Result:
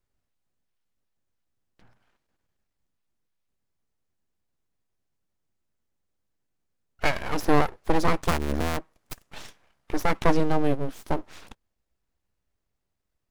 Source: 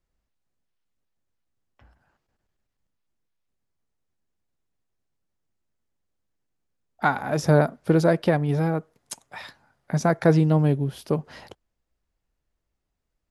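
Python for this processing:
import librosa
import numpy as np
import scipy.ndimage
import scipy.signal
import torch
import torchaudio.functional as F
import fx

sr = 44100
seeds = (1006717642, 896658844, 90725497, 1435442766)

y = fx.cycle_switch(x, sr, every=2, mode='muted', at=(8.27, 8.76), fade=0.02)
y = np.abs(y)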